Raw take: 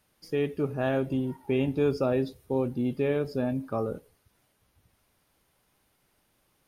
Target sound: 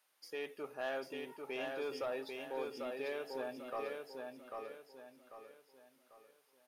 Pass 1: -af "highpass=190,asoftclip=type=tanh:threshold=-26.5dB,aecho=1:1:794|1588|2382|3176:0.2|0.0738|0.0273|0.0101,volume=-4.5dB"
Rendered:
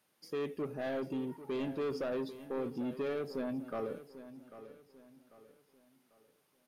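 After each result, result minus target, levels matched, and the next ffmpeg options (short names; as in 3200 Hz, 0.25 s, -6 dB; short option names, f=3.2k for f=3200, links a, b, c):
250 Hz band +7.0 dB; echo-to-direct -10 dB
-af "highpass=710,asoftclip=type=tanh:threshold=-26.5dB,aecho=1:1:794|1588|2382|3176:0.2|0.0738|0.0273|0.0101,volume=-4.5dB"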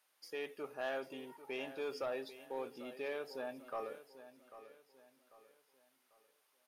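echo-to-direct -10 dB
-af "highpass=710,asoftclip=type=tanh:threshold=-26.5dB,aecho=1:1:794|1588|2382|3176|3970:0.631|0.233|0.0864|0.032|0.0118,volume=-4.5dB"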